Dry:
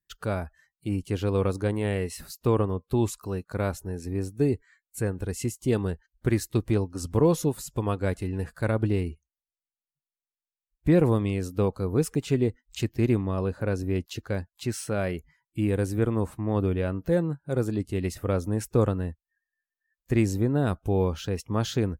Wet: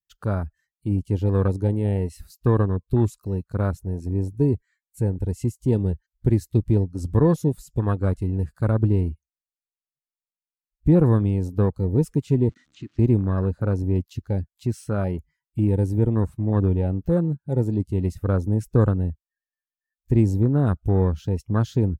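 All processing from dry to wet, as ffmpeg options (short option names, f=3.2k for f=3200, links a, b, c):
-filter_complex "[0:a]asettb=1/sr,asplit=3[a][b][c];[a]atrim=end=12.494[d];[b]atrim=start=12.49:end=12.99,asetpts=PTS-STARTPTS,afade=t=in:d=0.004:c=qsin,afade=t=out:st=0.496:d=0.004:c=qsin,aeval=exprs='val(0)+0.5*0.00841*sgn(val(0))':c=same,acrossover=split=1100|5000[e][f][g];[e]acompressor=threshold=-37dB:ratio=4[h];[f]acompressor=threshold=-41dB:ratio=4[i];[g]acompressor=threshold=-56dB:ratio=4[j];[h][i][j]amix=inputs=3:normalize=0,highpass=170,equalizer=f=290:t=q:w=4:g=9,equalizer=f=410:t=q:w=4:g=-8,equalizer=f=910:t=q:w=4:g=-5,equalizer=f=1.3k:t=q:w=4:g=5,equalizer=f=5.2k:t=q:w=4:g=-3,lowpass=f=7k:w=0.5412,lowpass=f=7k:w=1.3066[k];[c]atrim=start=12.986[l];[d][k]acrossfade=d=0.004:c1=hsin:c2=qsin[m];[m][l]acrossfade=d=0.004:c1=qsin:c2=hsin,afwtdn=0.0251,equalizer=f=610:w=0.44:g=-8.5,volume=8.5dB"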